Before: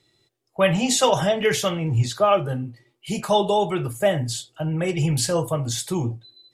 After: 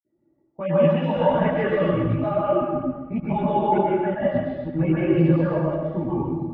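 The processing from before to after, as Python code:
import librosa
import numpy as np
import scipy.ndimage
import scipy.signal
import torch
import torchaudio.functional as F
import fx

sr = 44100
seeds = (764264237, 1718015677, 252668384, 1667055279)

y = fx.spec_dropout(x, sr, seeds[0], share_pct=24)
y = scipy.signal.sosfilt(scipy.signal.butter(4, 2200.0, 'lowpass', fs=sr, output='sos'), y)
y = fx.env_lowpass(y, sr, base_hz=680.0, full_db=-19.0)
y = scipy.signal.sosfilt(scipy.signal.butter(4, 130.0, 'highpass', fs=sr, output='sos'), y)
y = fx.low_shelf(y, sr, hz=230.0, db=10.5)
y = y + 0.55 * np.pad(y, (int(3.5 * sr / 1000.0), 0))[:len(y)]
y = fx.level_steps(y, sr, step_db=23)
y = y + 10.0 ** (-5.0 / 20.0) * np.pad(y, (int(123 * sr / 1000.0), 0))[:len(y)]
y = fx.rev_plate(y, sr, seeds[1], rt60_s=1.3, hf_ratio=0.8, predelay_ms=115, drr_db=-6.0)
y = fx.chorus_voices(y, sr, voices=6, hz=1.1, base_ms=15, depth_ms=3.4, mix_pct=60)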